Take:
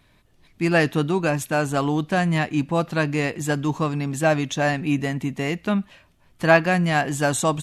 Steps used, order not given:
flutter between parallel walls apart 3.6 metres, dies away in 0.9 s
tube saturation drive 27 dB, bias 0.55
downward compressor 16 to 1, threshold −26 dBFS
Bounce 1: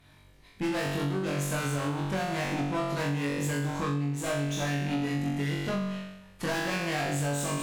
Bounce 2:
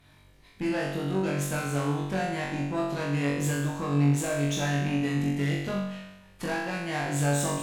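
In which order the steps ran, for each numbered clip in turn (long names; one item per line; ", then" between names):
tube saturation, then flutter between parallel walls, then downward compressor
downward compressor, then tube saturation, then flutter between parallel walls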